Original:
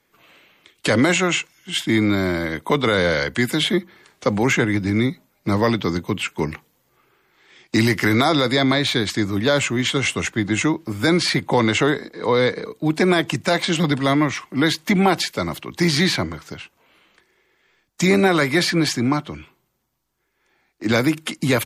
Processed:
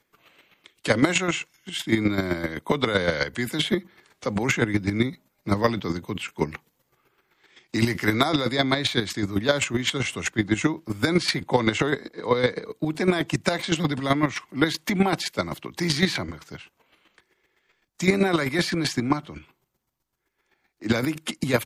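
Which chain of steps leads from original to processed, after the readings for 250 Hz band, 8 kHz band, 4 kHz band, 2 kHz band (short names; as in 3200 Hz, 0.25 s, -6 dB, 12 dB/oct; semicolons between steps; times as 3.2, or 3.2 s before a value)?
-5.0 dB, -5.0 dB, -5.0 dB, -5.0 dB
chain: chopper 7.8 Hz, depth 60%, duty 20%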